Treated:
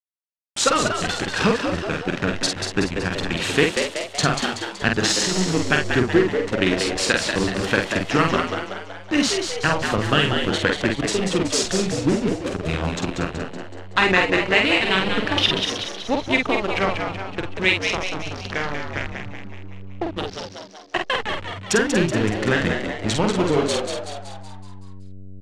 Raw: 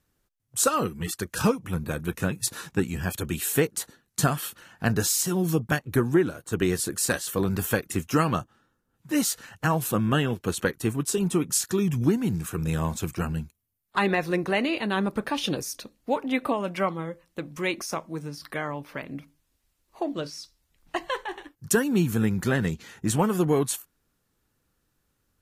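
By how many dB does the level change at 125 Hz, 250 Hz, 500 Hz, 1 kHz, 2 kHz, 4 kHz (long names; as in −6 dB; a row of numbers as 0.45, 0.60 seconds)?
+1.0, +3.0, +5.5, +6.0, +10.5, +12.5 decibels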